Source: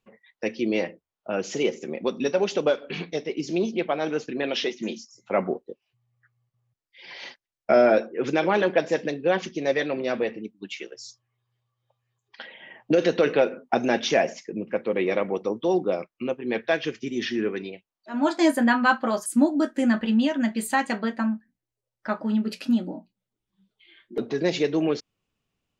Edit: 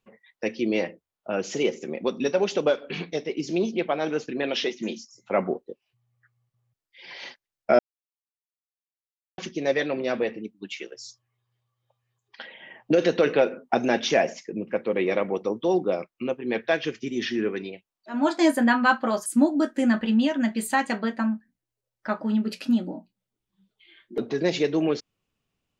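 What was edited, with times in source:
7.79–9.38 mute

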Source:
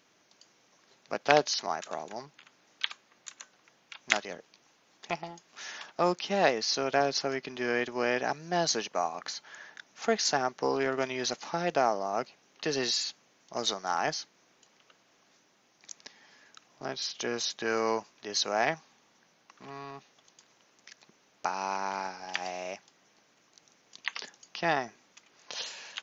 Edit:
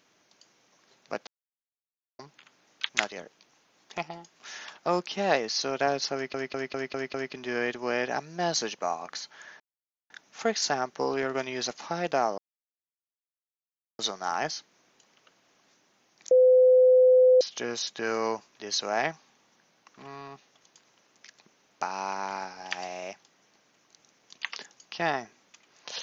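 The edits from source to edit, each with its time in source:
1.27–2.19 mute
2.89–4.02 cut
7.27 stutter 0.20 s, 6 plays
9.73 insert silence 0.50 s
12.01–13.62 mute
15.94–17.04 bleep 509 Hz -14.5 dBFS

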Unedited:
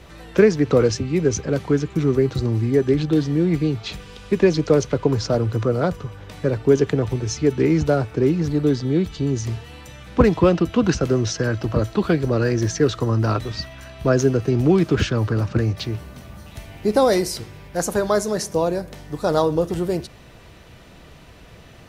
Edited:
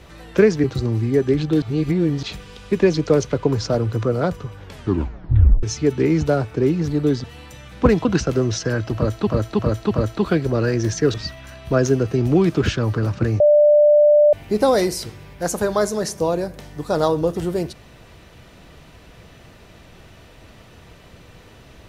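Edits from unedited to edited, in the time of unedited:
0.64–2.24 cut
3.22–3.83 reverse
6.22 tape stop 1.01 s
8.84–9.59 cut
10.4–10.79 cut
11.69–12.01 loop, 4 plays
12.92–13.48 cut
15.74–16.67 bleep 593 Hz -9 dBFS

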